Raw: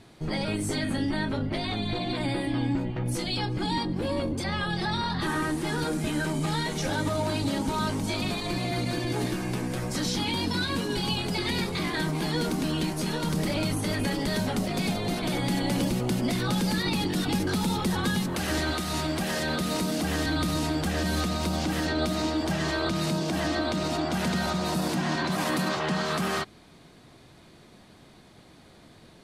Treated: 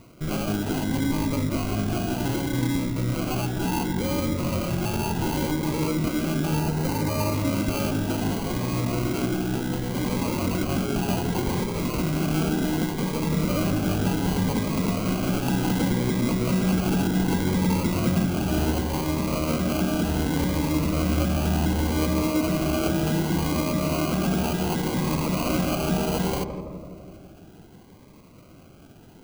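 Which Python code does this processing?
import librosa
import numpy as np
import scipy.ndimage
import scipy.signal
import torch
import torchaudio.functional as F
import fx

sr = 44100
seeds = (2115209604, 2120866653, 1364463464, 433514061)

y = fx.sample_hold(x, sr, seeds[0], rate_hz=1800.0, jitter_pct=0)
y = fx.notch(y, sr, hz=3300.0, q=5.0, at=(6.59, 7.34))
y = fx.echo_filtered(y, sr, ms=167, feedback_pct=70, hz=1100.0, wet_db=-7.5)
y = fx.notch_cascade(y, sr, direction='rising', hz=0.67)
y = y * 10.0 ** (3.0 / 20.0)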